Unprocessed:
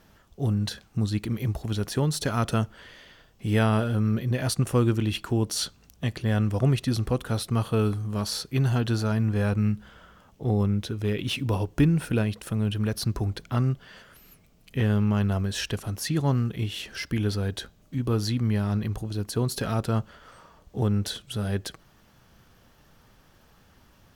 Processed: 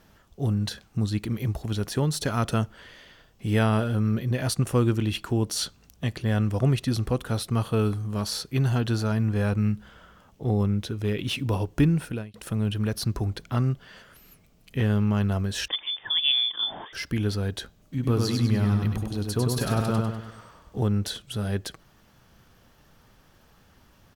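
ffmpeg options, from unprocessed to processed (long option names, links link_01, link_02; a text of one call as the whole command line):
ffmpeg -i in.wav -filter_complex "[0:a]asettb=1/sr,asplit=3[link_01][link_02][link_03];[link_01]atrim=end=15.684[link_04];[link_02]atrim=start=15.68:end=16.93,asetpts=PTS-STARTPTS,afade=type=in:duration=0.004:curve=qsin,afade=type=out:start_time=1.246:duration=0.004:curve=qsin,lowpass=frequency=3100:width_type=q:width=0.5098,lowpass=frequency=3100:width_type=q:width=0.6013,lowpass=frequency=3100:width_type=q:width=0.9,lowpass=frequency=3100:width_type=q:width=2.563,afreqshift=-3600[link_05];[link_03]atrim=start=16.926[link_06];[link_04][link_05]acrossfade=duration=0.004:curve1=hsin:curve2=qsin[link_07];[link_07][link_06]acrossfade=duration=0.004:curve1=qsin:curve2=hsin,asplit=3[link_08][link_09][link_10];[link_08]afade=type=out:start_time=18.02:duration=0.02[link_11];[link_09]aecho=1:1:99|198|297|396|495:0.668|0.287|0.124|0.0531|0.0228,afade=type=in:start_time=18.02:duration=0.02,afade=type=out:start_time=20.81:duration=0.02[link_12];[link_10]afade=type=in:start_time=20.81:duration=0.02[link_13];[link_11][link_12][link_13]amix=inputs=3:normalize=0,asplit=2[link_14][link_15];[link_14]atrim=end=12.34,asetpts=PTS-STARTPTS,afade=type=out:start_time=11.93:duration=0.41[link_16];[link_15]atrim=start=12.34,asetpts=PTS-STARTPTS,afade=type=in:duration=0.004:curve=hsin[link_17];[link_16][link_17]concat=n=2:v=0:a=1" out.wav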